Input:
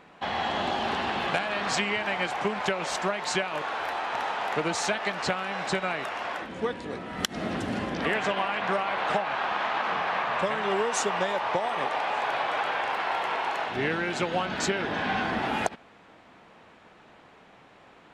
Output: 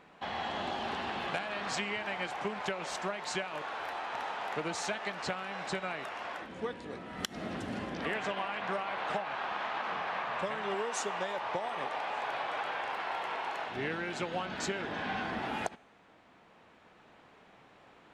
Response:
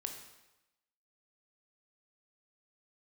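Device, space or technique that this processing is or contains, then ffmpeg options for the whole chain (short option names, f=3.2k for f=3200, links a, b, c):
ducked reverb: -filter_complex "[0:a]asplit=3[a][b][c];[1:a]atrim=start_sample=2205[d];[b][d]afir=irnorm=-1:irlink=0[e];[c]apad=whole_len=799968[f];[e][f]sidechaincompress=threshold=-40dB:ratio=3:attack=9:release=1090,volume=-3.5dB[g];[a][g]amix=inputs=2:normalize=0,asettb=1/sr,asplit=3[h][i][j];[h]atrim=end=10.744[k];[i]atrim=start=10.74:end=11.38,asetpts=PTS-STARTPTS,afade=t=in:d=0.004:c=qsin,afade=t=out:st=0.636:d=0.004:c=qsin,highpass=f=170:p=1[l];[j]atrim=start=11.376[m];[k][l]acrossfade=d=0.004:c1=hsin:c2=qsin[n];[n][m]acrossfade=d=0.004:c1=qsin:c2=hsin,volume=-8.5dB"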